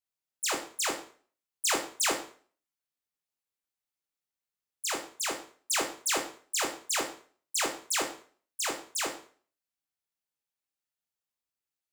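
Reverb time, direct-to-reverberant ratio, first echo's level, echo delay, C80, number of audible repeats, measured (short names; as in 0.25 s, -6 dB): 0.45 s, 2.0 dB, none, none, 13.5 dB, none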